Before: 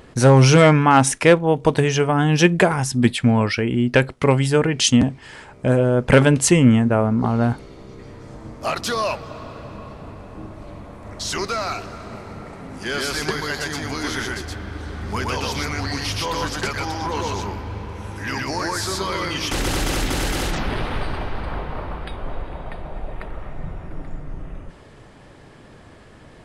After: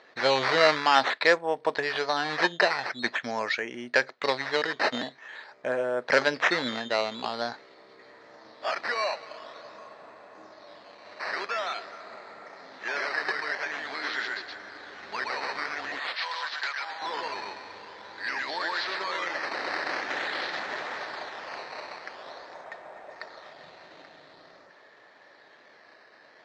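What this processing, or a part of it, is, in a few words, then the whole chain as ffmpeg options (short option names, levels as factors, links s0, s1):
circuit-bent sampling toy: -filter_complex "[0:a]asettb=1/sr,asplit=3[s0][s1][s2];[s0]atrim=end=15.994[s3];[s1]atrim=start=15.99:end=17.02,asetpts=PTS-STARTPTS,afade=t=in:d=0.004:c=qsin,afade=t=out:st=1.026:d=0.004:c=qsin,highpass=890[s4];[s2]atrim=start=17.016[s5];[s3][s4]acrossfade=d=0.004:c1=hsin:c2=qsin[s6];[s6][s5]acrossfade=d=0.004:c1=qsin:c2=hsin,acrusher=samples=9:mix=1:aa=0.000001:lfo=1:lforange=9:lforate=0.47,highpass=580,equalizer=f=620:t=q:w=4:g=3,equalizer=f=1800:t=q:w=4:g=8,equalizer=f=2900:t=q:w=4:g=-4,equalizer=f=4200:t=q:w=4:g=7,lowpass=f=4800:w=0.5412,lowpass=f=4800:w=1.3066,volume=0.501"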